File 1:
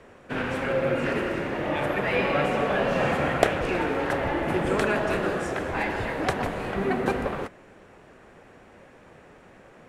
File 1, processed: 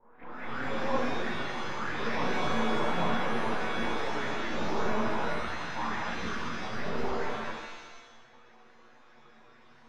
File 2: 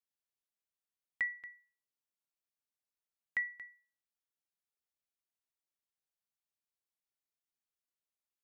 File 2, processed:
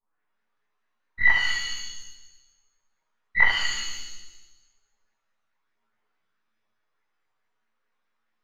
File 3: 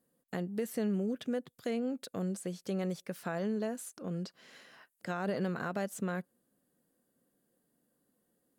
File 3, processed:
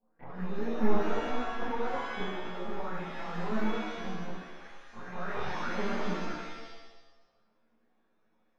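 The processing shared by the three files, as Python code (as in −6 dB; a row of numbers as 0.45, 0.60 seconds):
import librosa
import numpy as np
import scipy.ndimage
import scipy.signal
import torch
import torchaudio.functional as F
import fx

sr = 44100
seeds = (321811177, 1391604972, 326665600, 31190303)

y = fx.spec_steps(x, sr, hold_ms=200)
y = fx.small_body(y, sr, hz=(230.0, 440.0), ring_ms=30, db=7)
y = fx.env_flanger(y, sr, rest_ms=9.6, full_db=-20.0)
y = fx.dynamic_eq(y, sr, hz=210.0, q=5.6, threshold_db=-44.0, ratio=4.0, max_db=6)
y = np.maximum(y, 0.0)
y = (np.kron(scipy.signal.resample_poly(y, 1, 3), np.eye(3)[0]) * 3)[:len(y)]
y = fx.filter_lfo_lowpass(y, sr, shape='saw_up', hz=4.7, low_hz=890.0, high_hz=2100.0, q=5.2)
y = fx.room_early_taps(y, sr, ms=(17, 70), db=(-6.5, -5.0))
y = fx.chorus_voices(y, sr, voices=4, hz=0.62, base_ms=27, depth_ms=4.8, mix_pct=65)
y = fx.rev_shimmer(y, sr, seeds[0], rt60_s=1.0, semitones=7, shimmer_db=-2, drr_db=3.5)
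y = y * 10.0 ** (-30 / 20.0) / np.sqrt(np.mean(np.square(y)))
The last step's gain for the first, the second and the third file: −7.0, +21.0, +3.5 decibels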